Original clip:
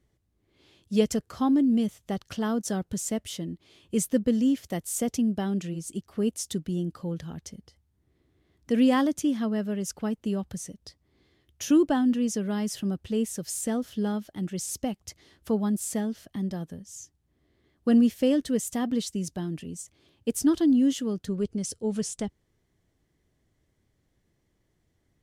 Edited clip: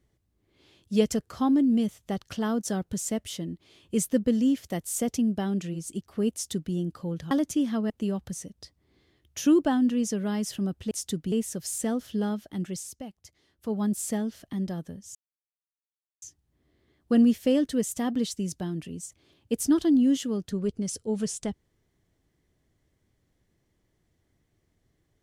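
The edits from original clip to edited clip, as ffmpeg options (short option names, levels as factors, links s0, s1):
-filter_complex "[0:a]asplit=8[s0][s1][s2][s3][s4][s5][s6][s7];[s0]atrim=end=7.312[s8];[s1]atrim=start=8.988:end=9.582[s9];[s2]atrim=start=10.138:end=13.152[s10];[s3]atrim=start=6.328:end=6.742[s11];[s4]atrim=start=13.148:end=14.75,asetpts=PTS-STARTPTS,afade=t=out:st=1.352:d=0.25:silence=0.316228[s12];[s5]atrim=start=14.75:end=15.43,asetpts=PTS-STARTPTS,volume=0.316[s13];[s6]atrim=start=15.43:end=16.98,asetpts=PTS-STARTPTS,afade=t=in:d=0.25:silence=0.316228,afade=t=out:st=1.546:d=0.004:c=hsin,apad=pad_dur=1.07[s14];[s7]atrim=start=16.98,asetpts=PTS-STARTPTS,afade=t=in:d=0.004:c=hsin[s15];[s8][s9]acrossfade=d=0.004:c1=hsin:c2=hsin[s16];[s16][s10]acrossfade=d=0.004:c1=hsin:c2=hsin[s17];[s17][s11]acrossfade=d=0.004:c1=hsin:c2=hsin[s18];[s12][s13][s14][s15]concat=n=4:v=0:a=1[s19];[s18][s19]acrossfade=d=0.004:c1=hsin:c2=hsin"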